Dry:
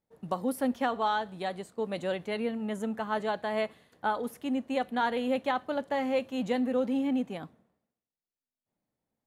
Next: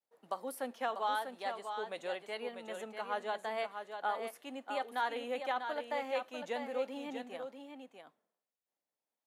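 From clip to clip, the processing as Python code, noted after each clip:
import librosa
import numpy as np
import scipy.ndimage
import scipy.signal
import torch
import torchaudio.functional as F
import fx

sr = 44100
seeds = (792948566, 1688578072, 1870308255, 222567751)

y = scipy.signal.sosfilt(scipy.signal.butter(2, 510.0, 'highpass', fs=sr, output='sos'), x)
y = fx.vibrato(y, sr, rate_hz=0.89, depth_cents=69.0)
y = y + 10.0 ** (-7.0 / 20.0) * np.pad(y, (int(644 * sr / 1000.0), 0))[:len(y)]
y = y * 10.0 ** (-5.0 / 20.0)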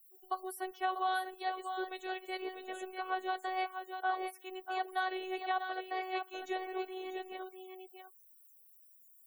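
y = fx.robotise(x, sr, hz=373.0)
y = fx.dmg_noise_colour(y, sr, seeds[0], colour='blue', level_db=-58.0)
y = fx.spec_topn(y, sr, count=64)
y = y * 10.0 ** (3.5 / 20.0)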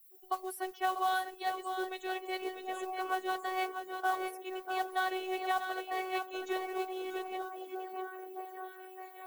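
y = fx.mod_noise(x, sr, seeds[1], snr_db=21)
y = fx.echo_stepped(y, sr, ms=613, hz=230.0, octaves=0.7, feedback_pct=70, wet_db=-4)
y = y * 10.0 ** (2.0 / 20.0)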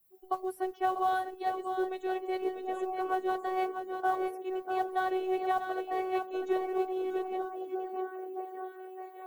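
y = fx.tilt_shelf(x, sr, db=8.5, hz=1100.0)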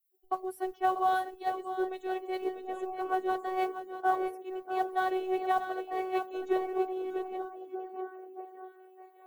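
y = fx.band_widen(x, sr, depth_pct=70)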